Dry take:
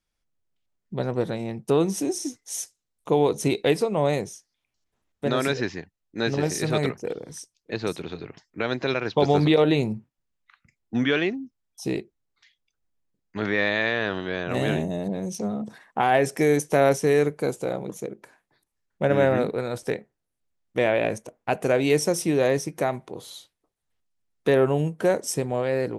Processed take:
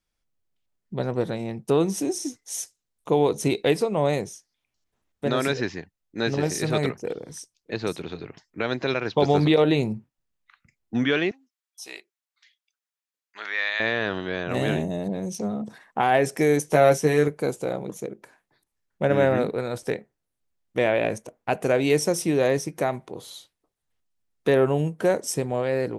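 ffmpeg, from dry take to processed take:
-filter_complex "[0:a]asettb=1/sr,asplit=3[a][b][c];[a]atrim=end=11.314[d];[b]atrim=start=11.31:end=13.8,asetpts=PTS-STARTPTS,afade=t=in:d=0.004:c=qsin,afade=t=out:st=2.486:d=0.004:c=qsin,highpass=1.2k[e];[c]atrim=start=13.796[f];[d][e]acrossfade=d=0.004:c1=hsin:c2=qsin[g];[g][f]acrossfade=d=0.004:c1=qsin:c2=hsin,asettb=1/sr,asplit=3[h][i][j];[h]atrim=end=16.664[k];[i]atrim=start=16.66:end=17.28,asetpts=PTS-STARTPTS,afade=t=in:d=0.004:c=qsin,afade=t=out:st=0.616:d=0.004:c=qsin,asplit=2[l][m];[m]adelay=13,volume=-5.5dB[n];[l][n]amix=inputs=2:normalize=0,atrim=end_sample=27342[o];[j]atrim=start=17.276[p];[k][o]acrossfade=d=0.004:c1=hsin:c2=qsin[q];[q][p]acrossfade=d=0.004:c1=qsin:c2=hsin"

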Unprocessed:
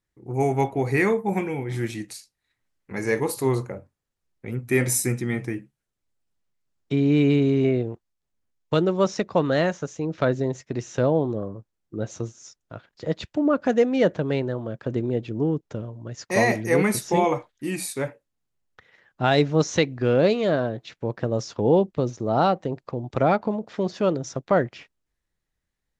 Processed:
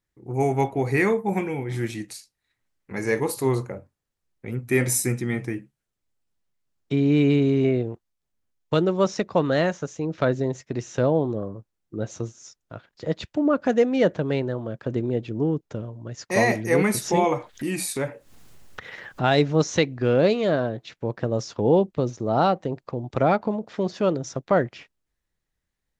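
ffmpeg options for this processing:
-filter_complex "[0:a]asettb=1/sr,asplit=3[a][b][c];[a]atrim=end=16.824[d];[b]atrim=start=16.82:end=19.58,asetpts=PTS-STARTPTS,afade=t=in:d=0.004:c=qsin,afade=t=out:st=2.756:d=0.004:c=qsin,acompressor=mode=upward:threshold=-22dB:ratio=2.5:attack=3.2:release=140:knee=2.83:detection=peak[e];[c]atrim=start=19.576[f];[d][e]acrossfade=d=0.004:c1=hsin:c2=qsin[g];[g][f]acrossfade=d=0.004:c1=qsin:c2=hsin"

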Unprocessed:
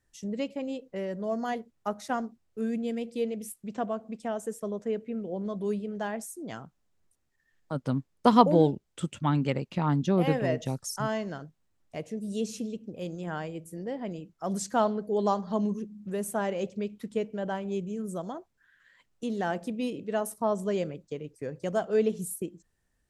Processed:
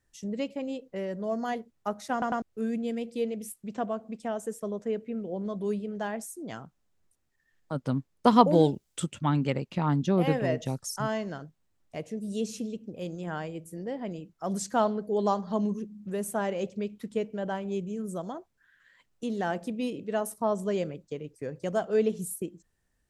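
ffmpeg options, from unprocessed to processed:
-filter_complex "[0:a]asplit=3[a][b][c];[a]afade=t=out:st=8.52:d=0.02[d];[b]highshelf=f=3.5k:g=11,afade=t=in:st=8.52:d=0.02,afade=t=out:st=9.03:d=0.02[e];[c]afade=t=in:st=9.03:d=0.02[f];[d][e][f]amix=inputs=3:normalize=0,asplit=4[g][h][i][j];[g]atrim=end=2.222[k];[h]atrim=start=2.118:end=2.222[l];[i]atrim=start=2.118:end=2.222[m];[j]atrim=start=2.418[n];[k][l]acrossfade=d=0.004:c1=hsin:c2=hsin[o];[o][m]acrossfade=d=0.004:c1=hsin:c2=hsin[p];[p][n]acrossfade=d=0.004:c1=hsin:c2=hsin"

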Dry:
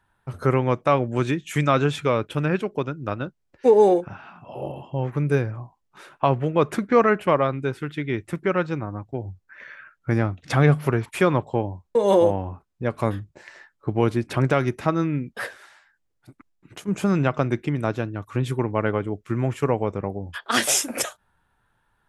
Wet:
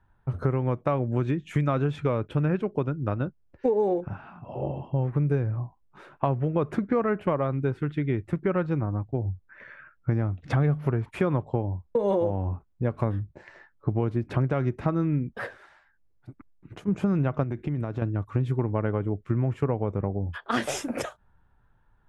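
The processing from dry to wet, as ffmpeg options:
-filter_complex "[0:a]asettb=1/sr,asplit=3[a][b][c];[a]atrim=end=17.434[d];[b]atrim=start=17.43:end=18.02,asetpts=PTS-STARTPTS,afade=t=in:d=0.004:c=qsin,afade=t=out:st=0.586:d=0.004:c=qsin,acompressor=threshold=-27dB:ratio=6:attack=3.2:release=140:knee=1:detection=peak[e];[c]atrim=start=18.016[f];[d][e]acrossfade=d=0.004:c1=hsin:c2=qsin[g];[g][f]acrossfade=d=0.004:c1=qsin:c2=hsin,lowpass=f=1.2k:p=1,lowshelf=f=120:g=10.5,acompressor=threshold=-21dB:ratio=6"

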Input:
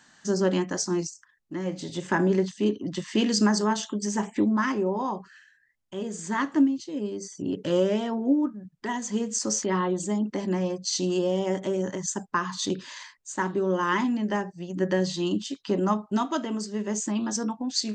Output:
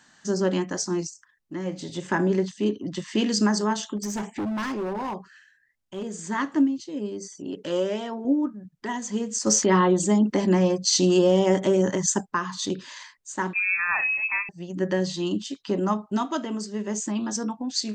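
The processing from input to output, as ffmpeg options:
-filter_complex "[0:a]asplit=3[a][b][c];[a]afade=t=out:st=3.96:d=0.02[d];[b]asoftclip=type=hard:threshold=-26dB,afade=t=in:st=3.96:d=0.02,afade=t=out:st=6.19:d=0.02[e];[c]afade=t=in:st=6.19:d=0.02[f];[d][e][f]amix=inputs=3:normalize=0,asettb=1/sr,asplit=3[g][h][i];[g]atrim=end=7.354[j];[h]atrim=start=7.35:end=8.25,asetpts=PTS-STARTPTS,afade=t=in:d=0.004:c=qsin,afade=t=out:st=0.896:d=0.004:c=qsin,equalizer=f=82:w=0.47:g=-12.5[k];[i]atrim=start=8.246[l];[j][k]acrossfade=d=0.004:c1=hsin:c2=qsin[m];[m][l]acrossfade=d=0.004:c1=qsin:c2=hsin,asettb=1/sr,asplit=3[n][o][p];[n]atrim=end=9.464[q];[o]atrim=start=9.46:end=12.21,asetpts=PTS-STARTPTS,afade=t=in:d=0.004:c=qsin,afade=t=out:st=2.746:d=0.004:c=qsin,acontrast=76[r];[p]atrim=start=12.206[s];[q][r]acrossfade=d=0.004:c1=hsin:c2=qsin[t];[t][s]acrossfade=d=0.004:c1=qsin:c2=hsin,asettb=1/sr,asplit=3[u][v][w];[u]atrim=end=13.534[x];[v]atrim=start=13.53:end=14.49,asetpts=PTS-STARTPTS,afade=t=in:d=0.004:c=qsin,afade=t=out:st=0.956:d=0.004:c=qsin,lowpass=f=2.4k:t=q:w=0.5098,lowpass=f=2.4k:t=q:w=0.6013,lowpass=f=2.4k:t=q:w=0.9,lowpass=f=2.4k:t=q:w=2.563,afreqshift=-2800[y];[w]atrim=start=14.486[z];[x][y]acrossfade=d=0.004:c1=hsin:c2=qsin[aa];[aa][z]acrossfade=d=0.004:c1=qsin:c2=hsin"

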